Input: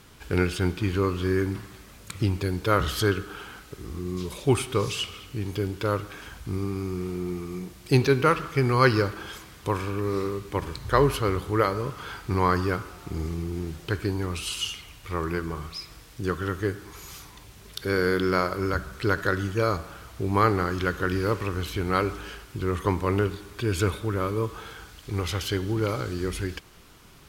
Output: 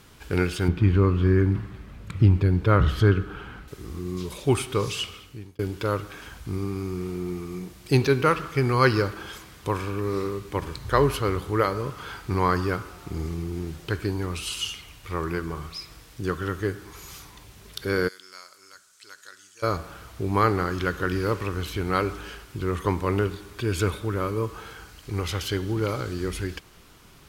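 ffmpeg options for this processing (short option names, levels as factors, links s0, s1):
-filter_complex "[0:a]asettb=1/sr,asplit=3[s0][s1][s2];[s0]atrim=end=0.684[s3];[s1]atrim=start=0.68:end=3.68,asetpts=PTS-STARTPTS,afade=t=in:d=0.004:c=qsin,afade=t=out:st=2.996:d=0.004:c=qsin,bass=f=250:g=9,treble=f=4000:g=-14[s4];[s2]atrim=start=3.676[s5];[s3][s4]acrossfade=d=0.004:c1=hsin:c2=qsin[s6];[s6][s5]acrossfade=d=0.004:c1=qsin:c2=hsin,asplit=3[s7][s8][s9];[s7]afade=t=out:st=18.07:d=0.02[s10];[s8]bandpass=f=7400:t=q:w=1.9,afade=t=in:st=18.07:d=0.02,afade=t=out:st=19.62:d=0.02[s11];[s9]afade=t=in:st=19.62:d=0.02[s12];[s10][s11][s12]amix=inputs=3:normalize=0,asettb=1/sr,asplit=3[s13][s14][s15];[s13]atrim=end=24.214[s16];[s14]atrim=start=24.21:end=25.25,asetpts=PTS-STARTPTS,afade=t=in:d=0.004:c=qsin,afade=t=out:st=1.036:d=0.004:c=qsin,bandreject=f=3500:w=12[s17];[s15]atrim=start=25.246[s18];[s16][s17]acrossfade=d=0.004:c1=hsin:c2=qsin[s19];[s19][s18]acrossfade=d=0.004:c1=qsin:c2=hsin,asplit=2[s20][s21];[s20]atrim=end=5.59,asetpts=PTS-STARTPTS,afade=t=out:st=5.07:d=0.52[s22];[s21]atrim=start=5.59,asetpts=PTS-STARTPTS,afade=t=in:d=0.004:c=hsin[s23];[s22][s23]concat=n=2:v=0:a=1"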